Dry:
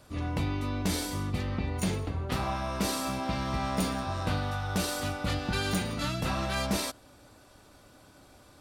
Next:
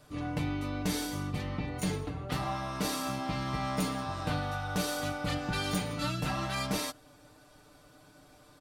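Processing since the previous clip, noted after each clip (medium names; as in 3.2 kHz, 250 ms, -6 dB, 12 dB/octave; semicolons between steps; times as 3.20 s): comb 6.7 ms; trim -3.5 dB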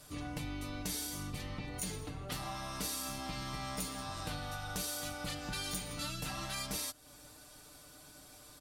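octave divider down 2 oct, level -5 dB; peaking EQ 12 kHz +14.5 dB 2.5 oct; compression 2.5:1, threshold -38 dBFS, peak gain reduction 11 dB; trim -2.5 dB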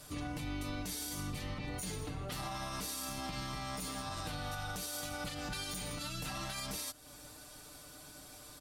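peak limiter -34 dBFS, peak gain reduction 9.5 dB; trim +3 dB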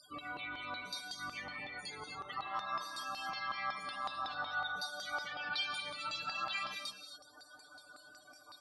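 loudest bins only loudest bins 32; LFO band-pass saw down 5.4 Hz 960–4300 Hz; gated-style reverb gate 280 ms rising, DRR 5.5 dB; trim +11.5 dB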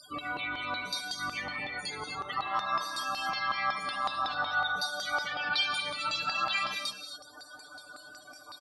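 delay 70 ms -21.5 dB; trim +8 dB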